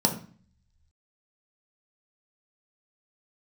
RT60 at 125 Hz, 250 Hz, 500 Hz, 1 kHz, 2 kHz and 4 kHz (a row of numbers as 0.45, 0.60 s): 1.1, 0.70, 0.40, 0.45, 0.45, 0.45 s